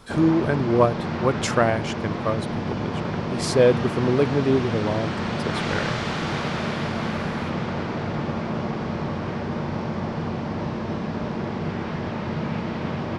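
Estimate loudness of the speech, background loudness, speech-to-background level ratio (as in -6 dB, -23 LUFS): -24.0 LUFS, -28.0 LUFS, 4.0 dB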